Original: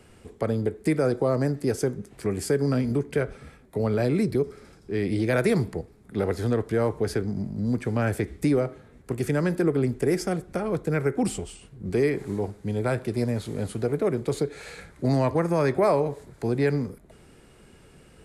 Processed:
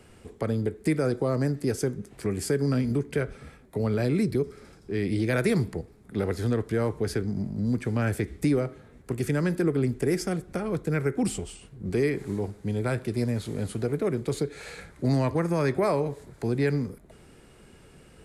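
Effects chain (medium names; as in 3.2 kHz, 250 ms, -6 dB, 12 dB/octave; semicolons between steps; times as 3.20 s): dynamic bell 700 Hz, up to -5 dB, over -36 dBFS, Q 0.88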